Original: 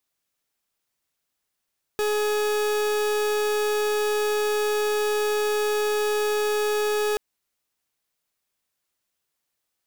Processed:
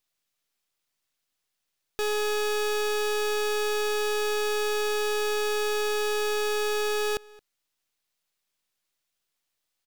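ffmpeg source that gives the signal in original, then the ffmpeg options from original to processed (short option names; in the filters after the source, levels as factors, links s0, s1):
-f lavfi -i "aevalsrc='0.0668*(2*lt(mod(421*t,1),0.41)-1)':d=5.18:s=44100"
-filter_complex "[0:a]aeval=exprs='if(lt(val(0),0),0.251*val(0),val(0))':c=same,equalizer=f=3700:t=o:w=2:g=4.5,asplit=2[s0][s1];[s1]adelay=221.6,volume=0.0708,highshelf=f=4000:g=-4.99[s2];[s0][s2]amix=inputs=2:normalize=0"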